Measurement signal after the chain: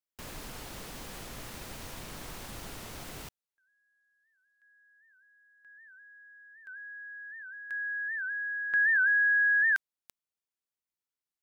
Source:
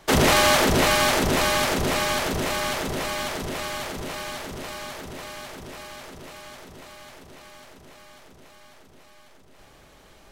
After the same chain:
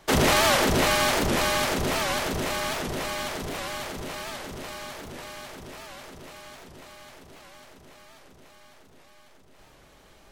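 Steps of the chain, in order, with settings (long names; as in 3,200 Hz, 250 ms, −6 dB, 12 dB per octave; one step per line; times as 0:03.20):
wow of a warped record 78 rpm, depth 160 cents
level −2.5 dB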